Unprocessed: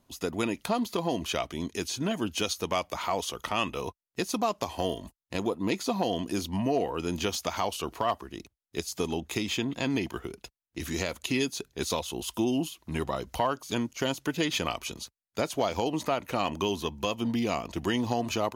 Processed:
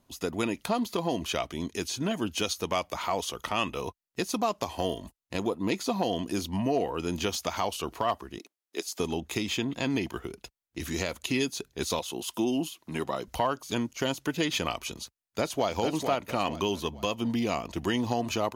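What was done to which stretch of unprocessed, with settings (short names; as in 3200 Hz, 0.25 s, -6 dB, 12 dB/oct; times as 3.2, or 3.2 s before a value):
8.38–9 HPF 270 Hz 24 dB/oct
11.99–13.28 HPF 160 Hz
14.93–15.7 echo throw 0.45 s, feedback 35%, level -6 dB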